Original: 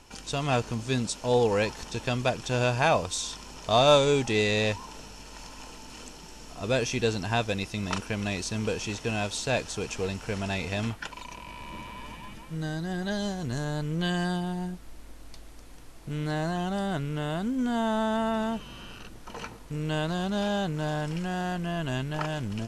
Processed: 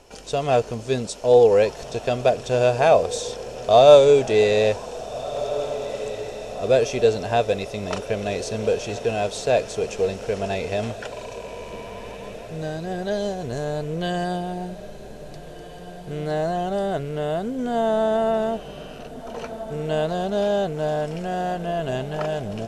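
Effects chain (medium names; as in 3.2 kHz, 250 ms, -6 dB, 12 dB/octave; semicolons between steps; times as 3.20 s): high-order bell 530 Hz +10.5 dB 1.1 oct; echo that smears into a reverb 1667 ms, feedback 54%, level -14 dB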